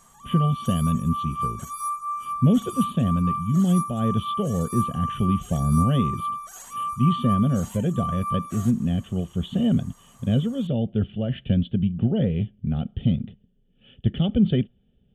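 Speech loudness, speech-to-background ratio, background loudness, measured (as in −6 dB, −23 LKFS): −24.5 LKFS, 6.5 dB, −31.0 LKFS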